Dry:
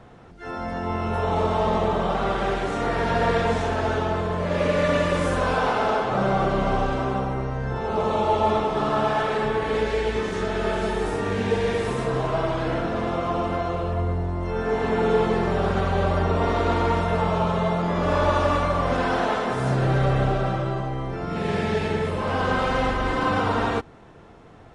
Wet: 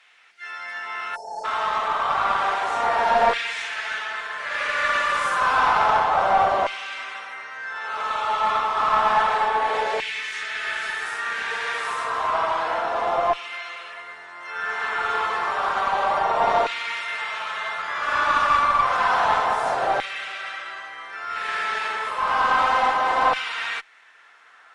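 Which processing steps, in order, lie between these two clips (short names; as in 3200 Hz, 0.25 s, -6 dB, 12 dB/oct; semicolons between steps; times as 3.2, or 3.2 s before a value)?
LFO high-pass saw down 0.3 Hz 730–2400 Hz; spectral delete 1.16–1.44, 910–4200 Hz; tube stage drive 12 dB, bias 0.35; gain +3 dB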